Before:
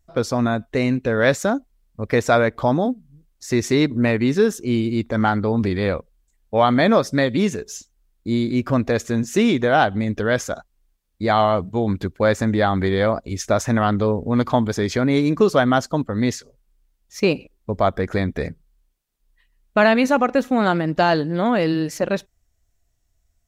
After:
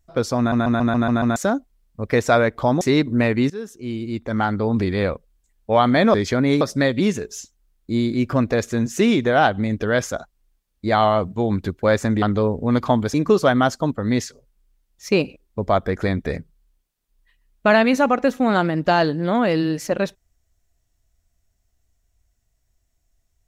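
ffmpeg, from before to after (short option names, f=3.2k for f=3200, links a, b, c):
-filter_complex "[0:a]asplit=14[a][b][c][d][e][f][g][h][i][j][k][l][m][n];[a]atrim=end=0.522[o];[b]atrim=start=0.378:end=0.522[p];[c]atrim=start=0.378:end=0.522[q];[d]atrim=start=0.378:end=0.522[r];[e]atrim=start=0.378:end=0.522[s];[f]atrim=start=0.378:end=0.522[t];[g]atrim=start=0.378:end=0.522[u];[h]atrim=start=1.358:end=2.812[v];[i]atrim=start=3.648:end=4.34,asetpts=PTS-STARTPTS,afade=t=out:st=0.688:d=0.004:c=hsin:silence=0.133352[w];[j]atrim=start=4.34:end=6.982,asetpts=PTS-STARTPTS,afade=t=in:d=1.28:silence=0.133352[x];[k]atrim=start=14.778:end=15.252[y];[l]atrim=start=6.978:end=12.592[z];[m]atrim=start=13.858:end=14.782[aa];[n]atrim=start=15.248[ab];[o][p]acrossfade=d=0.004:c1=hsin:c2=hsin[ac];[ac][q]acrossfade=d=0.004:c1=hsin:c2=hsin[ad];[ad][r]acrossfade=d=0.004:c1=hsin:c2=hsin[ae];[ae][s]acrossfade=d=0.004:c1=hsin:c2=hsin[af];[af][t]acrossfade=d=0.004:c1=hsin:c2=hsin[ag];[ag][u]acrossfade=d=0.004:c1=hsin:c2=hsin[ah];[ah][v]acrossfade=d=0.004:c1=hsin:c2=hsin[ai];[w][x]concat=n=2:v=0:a=1[aj];[ai][aj]acrossfade=d=0.004:c1=hsin:c2=hsin[ak];[ak][y]acrossfade=d=0.004:c1=hsin:c2=hsin[al];[al][z]acrossfade=d=0.004:c1=hsin:c2=hsin[am];[am][aa]acrossfade=d=0.004:c1=hsin:c2=hsin[an];[an][ab]acrossfade=d=0.004:c1=hsin:c2=hsin"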